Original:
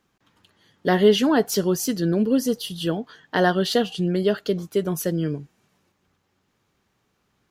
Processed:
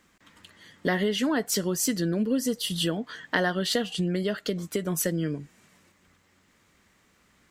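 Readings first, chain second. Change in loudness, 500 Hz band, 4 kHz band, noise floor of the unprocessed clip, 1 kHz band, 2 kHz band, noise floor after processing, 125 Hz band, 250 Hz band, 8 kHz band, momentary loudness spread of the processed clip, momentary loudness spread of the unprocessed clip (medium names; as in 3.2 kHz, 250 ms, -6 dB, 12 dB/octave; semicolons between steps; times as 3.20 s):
-5.0 dB, -8.0 dB, -2.0 dB, -71 dBFS, -7.5 dB, -1.5 dB, -65 dBFS, -4.5 dB, -5.0 dB, +1.5 dB, 6 LU, 10 LU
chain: compression 3:1, threshold -32 dBFS, peak gain reduction 15.5 dB; graphic EQ with 31 bands 125 Hz -10 dB, 400 Hz -5 dB, 800 Hz -5 dB, 2 kHz +7 dB, 8 kHz +8 dB; trim +6.5 dB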